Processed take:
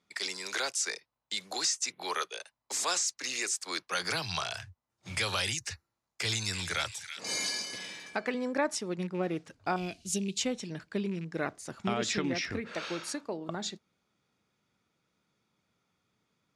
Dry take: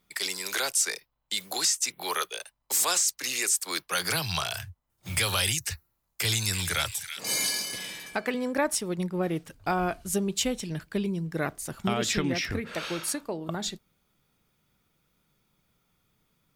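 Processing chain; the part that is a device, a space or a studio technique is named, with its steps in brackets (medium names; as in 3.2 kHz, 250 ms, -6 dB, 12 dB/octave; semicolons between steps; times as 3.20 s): car door speaker with a rattle (rattle on loud lows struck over -29 dBFS, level -36 dBFS; cabinet simulation 110–8500 Hz, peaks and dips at 150 Hz -5 dB, 3.1 kHz -3 dB, 8.4 kHz -6 dB); 9.76–10.38 s: FFT filter 250 Hz 0 dB, 1.4 kHz -19 dB, 2.7 kHz +7 dB; trim -3 dB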